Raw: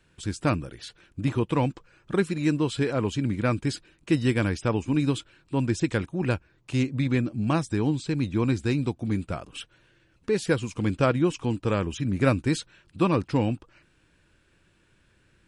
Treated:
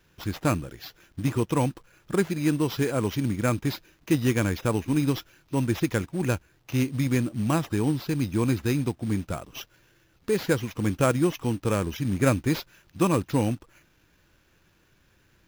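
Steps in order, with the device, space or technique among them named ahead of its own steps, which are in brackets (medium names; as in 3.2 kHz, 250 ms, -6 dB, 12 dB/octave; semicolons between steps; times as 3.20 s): early companding sampler (sample-rate reducer 8.8 kHz, jitter 0%; companded quantiser 6-bit)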